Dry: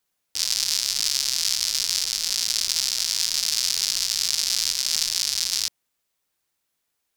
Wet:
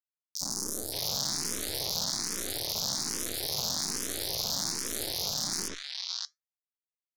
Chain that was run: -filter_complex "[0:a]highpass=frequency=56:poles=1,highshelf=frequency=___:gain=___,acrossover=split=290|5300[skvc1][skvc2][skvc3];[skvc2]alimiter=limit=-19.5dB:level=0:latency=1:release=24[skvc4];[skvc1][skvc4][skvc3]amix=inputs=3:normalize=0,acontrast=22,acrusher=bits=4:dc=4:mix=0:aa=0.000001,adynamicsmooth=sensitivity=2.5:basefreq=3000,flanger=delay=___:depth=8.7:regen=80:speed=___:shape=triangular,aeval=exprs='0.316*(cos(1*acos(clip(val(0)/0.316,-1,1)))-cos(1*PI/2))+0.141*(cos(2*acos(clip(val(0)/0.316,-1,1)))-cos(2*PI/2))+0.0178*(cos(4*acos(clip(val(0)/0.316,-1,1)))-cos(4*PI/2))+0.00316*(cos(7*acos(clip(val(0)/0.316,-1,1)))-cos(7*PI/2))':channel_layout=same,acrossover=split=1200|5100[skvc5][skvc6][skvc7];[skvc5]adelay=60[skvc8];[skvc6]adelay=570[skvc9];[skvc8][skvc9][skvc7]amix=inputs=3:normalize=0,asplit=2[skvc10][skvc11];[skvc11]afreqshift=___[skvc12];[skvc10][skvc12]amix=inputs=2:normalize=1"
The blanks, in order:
12000, 5.5, 0.3, 0.46, 1.2